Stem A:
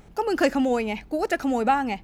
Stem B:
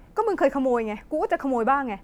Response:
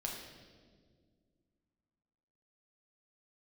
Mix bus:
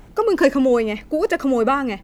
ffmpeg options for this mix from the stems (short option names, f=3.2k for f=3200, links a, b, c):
-filter_complex "[0:a]acrusher=bits=10:mix=0:aa=0.000001,volume=2dB[a];[1:a]lowpass=f=4.6k:w=0.5412,lowpass=f=4.6k:w=1.3066,volume=-1,adelay=1.7,volume=1.5dB[b];[a][b]amix=inputs=2:normalize=0"